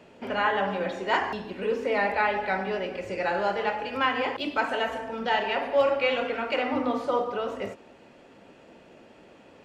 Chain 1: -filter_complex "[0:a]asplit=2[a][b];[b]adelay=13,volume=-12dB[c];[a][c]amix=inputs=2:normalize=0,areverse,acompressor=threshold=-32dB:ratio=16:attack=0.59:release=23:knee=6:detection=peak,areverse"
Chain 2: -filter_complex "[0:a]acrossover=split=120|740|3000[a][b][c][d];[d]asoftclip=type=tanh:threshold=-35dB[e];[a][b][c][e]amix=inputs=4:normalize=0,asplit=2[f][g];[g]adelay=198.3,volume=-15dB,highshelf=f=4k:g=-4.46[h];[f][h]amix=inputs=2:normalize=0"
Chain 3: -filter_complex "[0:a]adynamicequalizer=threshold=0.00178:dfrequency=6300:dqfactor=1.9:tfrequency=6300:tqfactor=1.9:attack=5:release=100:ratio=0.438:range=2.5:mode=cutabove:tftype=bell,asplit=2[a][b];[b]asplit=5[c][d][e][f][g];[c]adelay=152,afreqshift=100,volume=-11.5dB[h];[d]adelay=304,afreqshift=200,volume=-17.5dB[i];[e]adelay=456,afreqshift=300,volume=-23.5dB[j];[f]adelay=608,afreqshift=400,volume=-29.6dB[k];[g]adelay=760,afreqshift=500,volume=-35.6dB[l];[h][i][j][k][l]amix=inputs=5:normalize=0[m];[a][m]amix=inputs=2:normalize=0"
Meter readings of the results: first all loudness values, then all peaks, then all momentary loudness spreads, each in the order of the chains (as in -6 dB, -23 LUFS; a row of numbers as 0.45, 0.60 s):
-36.5, -27.5, -27.0 LUFS; -27.0, -11.0, -10.5 dBFS; 16, 8, 8 LU